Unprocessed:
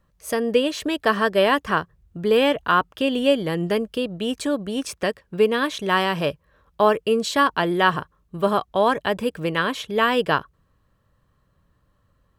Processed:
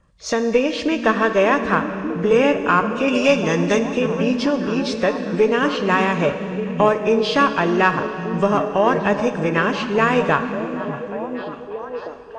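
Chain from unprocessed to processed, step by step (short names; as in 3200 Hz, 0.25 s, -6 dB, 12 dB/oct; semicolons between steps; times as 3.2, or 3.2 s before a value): nonlinear frequency compression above 2000 Hz 1.5:1; 3.08–3.8 bell 7400 Hz +11 dB 2.9 oct; in parallel at +2 dB: compressor, threshold -26 dBFS, peak gain reduction 14 dB; on the sum: added harmonics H 4 -26 dB, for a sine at -1.5 dBFS; on a send: delay with a stepping band-pass 0.591 s, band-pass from 170 Hz, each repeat 0.7 oct, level -3 dB; on the sum: Schroeder reverb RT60 2.8 s, combs from 28 ms, DRR 9 dB; gain -1 dB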